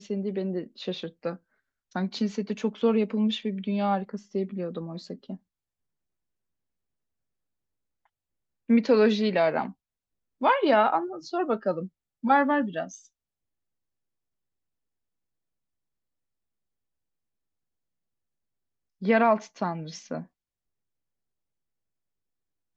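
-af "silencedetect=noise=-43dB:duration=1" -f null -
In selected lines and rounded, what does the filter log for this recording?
silence_start: 5.36
silence_end: 8.69 | silence_duration: 3.33
silence_start: 12.98
silence_end: 19.02 | silence_duration: 6.04
silence_start: 20.24
silence_end: 22.76 | silence_duration: 2.53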